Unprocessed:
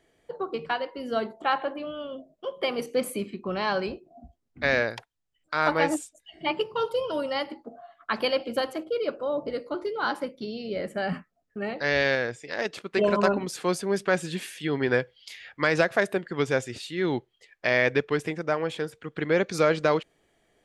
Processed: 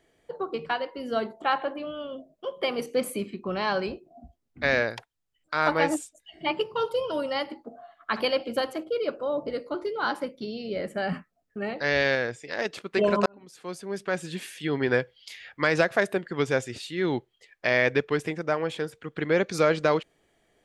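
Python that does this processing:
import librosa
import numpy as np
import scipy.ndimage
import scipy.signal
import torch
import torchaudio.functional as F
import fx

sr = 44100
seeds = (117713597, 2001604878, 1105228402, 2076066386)

y = fx.room_flutter(x, sr, wall_m=11.5, rt60_s=0.27, at=(7.73, 8.28))
y = fx.edit(y, sr, fx.fade_in_span(start_s=13.26, length_s=1.46), tone=tone)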